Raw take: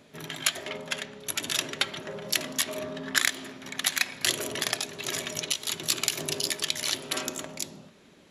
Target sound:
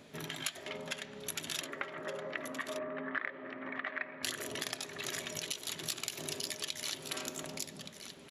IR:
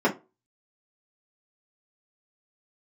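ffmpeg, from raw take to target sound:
-filter_complex "[0:a]asettb=1/sr,asplit=3[s0][s1][s2];[s0]atrim=end=1.614[s3];[s1]atrim=start=1.61:end=4.23,asetpts=PTS-STARTPTS,afade=t=in:d=0.004:c=qsin,afade=t=out:st=2.616:d=0.004:c=qsin,highpass=160,equalizer=f=190:t=q:w=4:g=-8,equalizer=f=280:t=q:w=4:g=4,equalizer=f=570:t=q:w=4:g=5,equalizer=f=1200:t=q:w=4:g=7,equalizer=f=1900:t=q:w=4:g=6,lowpass=f=2100:w=0.5412,lowpass=f=2100:w=1.3066[s4];[s2]atrim=start=4.226[s5];[s3][s4]acrossfade=d=0.004:c1=hsin:c2=qsin[s6];[s6][s5]acrossfade=d=0.004:c1=qsin:c2=hsin,acompressor=threshold=0.01:ratio=2.5,aecho=1:1:1171:0.316"

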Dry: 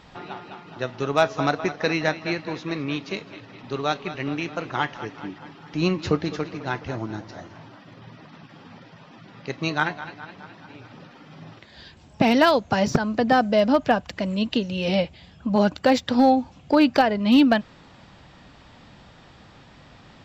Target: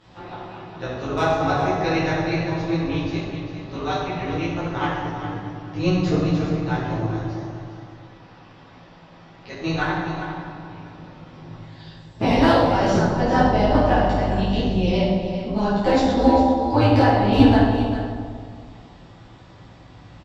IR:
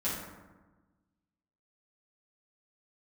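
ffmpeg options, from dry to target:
-filter_complex "[0:a]asettb=1/sr,asplit=3[s0][s1][s2];[s0]atrim=end=7.154[s3];[s1]atrim=start=7.15:end=9.55,asetpts=PTS-STARTPTS,afade=t=in:d=0.004:c=qsin,afade=t=out:st=2.396:d=0.004:c=qsin,highpass=f=370:p=1[s4];[s2]atrim=start=9.546[s5];[s3][s4]acrossfade=d=0.004:c1=hsin:c2=qsin[s6];[s6][s5]acrossfade=d=0.004:c1=qsin:c2=hsin,asettb=1/sr,asplit=3[s7][s8][s9];[s7]atrim=end=13.334[s10];[s8]atrim=start=13.33:end=14.85,asetpts=PTS-STARTPTS,afade=t=in:d=0.004:c=qsin,afade=t=out:st=1.516:d=0.004:c=qsin,aeval=exprs='val(0)+0.0316*(sin(2*PI*50*n/s)+sin(2*PI*2*50*n/s)/2+sin(2*PI*3*50*n/s)/3+sin(2*PI*4*50*n/s)/4+sin(2*PI*5*50*n/s)/5)':c=same[s11];[s9]atrim=start=14.846[s12];[s10][s11]acrossfade=d=0.004:c1=hsin:c2=qsin[s13];[s13][s12]acrossfade=d=0.004:c1=qsin:c2=hsin,tremolo=f=190:d=0.788,aecho=1:1:400:0.299[s14];[1:a]atrim=start_sample=2205,asetrate=25137,aresample=44100[s15];[s14][s15]afir=irnorm=-1:irlink=0,volume=0.501"

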